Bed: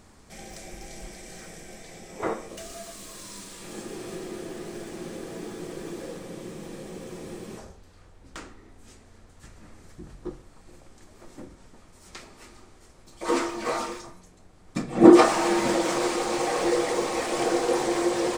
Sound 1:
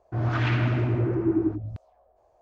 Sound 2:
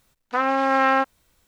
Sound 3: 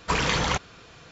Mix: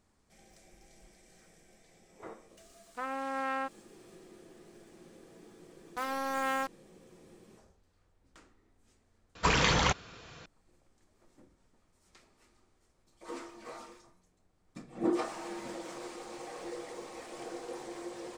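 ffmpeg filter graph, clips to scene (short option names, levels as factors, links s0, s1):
-filter_complex "[2:a]asplit=2[s0][s1];[0:a]volume=0.126[s2];[s1]acrusher=bits=3:mix=0:aa=0.5[s3];[s2]asplit=2[s4][s5];[s4]atrim=end=9.354[s6];[3:a]atrim=end=1.11,asetpts=PTS-STARTPTS,volume=0.794[s7];[s5]atrim=start=10.456[s8];[s0]atrim=end=1.47,asetpts=PTS-STARTPTS,volume=0.168,afade=t=in:d=0.004:c=hsin,afade=t=out:st=1.466:d=0.004:c=hsin,adelay=2640[s9];[s3]atrim=end=1.47,asetpts=PTS-STARTPTS,volume=0.211,afade=t=in:d=0.004:c=hsin,afade=t=out:st=1.466:d=0.004:c=hsin,adelay=5630[s10];[s6][s7]acrossfade=d=0.004:c1=hsin:c2=hsin[s11];[s11][s8]acrossfade=d=0.004:c1=hsin:c2=hsin[s12];[s12][s9][s10]amix=inputs=3:normalize=0"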